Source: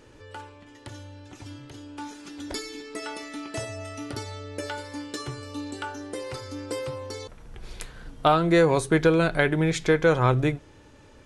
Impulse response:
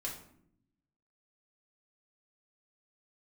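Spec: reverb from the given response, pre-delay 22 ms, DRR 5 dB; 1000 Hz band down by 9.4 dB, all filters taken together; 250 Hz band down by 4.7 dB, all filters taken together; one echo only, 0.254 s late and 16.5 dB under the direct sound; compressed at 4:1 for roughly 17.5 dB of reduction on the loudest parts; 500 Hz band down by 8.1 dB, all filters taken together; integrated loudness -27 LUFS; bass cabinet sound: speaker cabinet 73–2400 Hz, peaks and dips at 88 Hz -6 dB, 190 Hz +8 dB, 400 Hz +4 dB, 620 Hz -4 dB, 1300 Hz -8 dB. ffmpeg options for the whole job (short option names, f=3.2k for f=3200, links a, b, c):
-filter_complex "[0:a]equalizer=f=250:t=o:g=-8.5,equalizer=f=500:t=o:g=-6,equalizer=f=1k:t=o:g=-6,acompressor=threshold=-43dB:ratio=4,aecho=1:1:254:0.15,asplit=2[a][b];[1:a]atrim=start_sample=2205,adelay=22[c];[b][c]afir=irnorm=-1:irlink=0,volume=-5.5dB[d];[a][d]amix=inputs=2:normalize=0,highpass=f=73:w=0.5412,highpass=f=73:w=1.3066,equalizer=f=88:t=q:w=4:g=-6,equalizer=f=190:t=q:w=4:g=8,equalizer=f=400:t=q:w=4:g=4,equalizer=f=620:t=q:w=4:g=-4,equalizer=f=1.3k:t=q:w=4:g=-8,lowpass=f=2.4k:w=0.5412,lowpass=f=2.4k:w=1.3066,volume=18.5dB"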